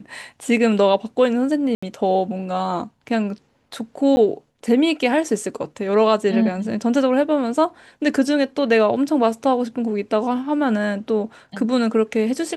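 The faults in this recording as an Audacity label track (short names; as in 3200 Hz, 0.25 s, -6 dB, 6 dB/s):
1.750000	1.820000	gap 75 ms
4.160000	4.170000	gap 10 ms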